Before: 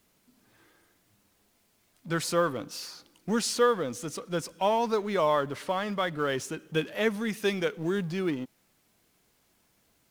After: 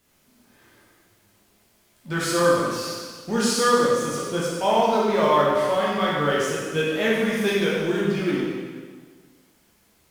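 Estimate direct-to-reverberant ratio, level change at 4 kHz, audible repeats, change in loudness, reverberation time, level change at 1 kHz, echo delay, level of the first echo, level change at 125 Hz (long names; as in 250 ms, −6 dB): −6.5 dB, +7.5 dB, no echo audible, +7.0 dB, 1.6 s, +7.5 dB, no echo audible, no echo audible, +6.0 dB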